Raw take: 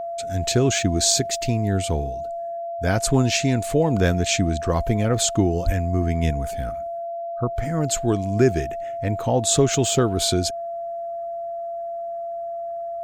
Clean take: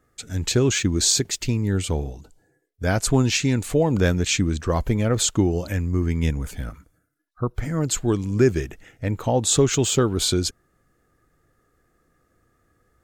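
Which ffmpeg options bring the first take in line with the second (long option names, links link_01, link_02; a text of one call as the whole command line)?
ffmpeg -i in.wav -filter_complex "[0:a]bandreject=frequency=680:width=30,asplit=3[link_01][link_02][link_03];[link_01]afade=type=out:start_time=5.65:duration=0.02[link_04];[link_02]highpass=frequency=140:width=0.5412,highpass=frequency=140:width=1.3066,afade=type=in:start_time=5.65:duration=0.02,afade=type=out:start_time=5.77:duration=0.02[link_05];[link_03]afade=type=in:start_time=5.77:duration=0.02[link_06];[link_04][link_05][link_06]amix=inputs=3:normalize=0" out.wav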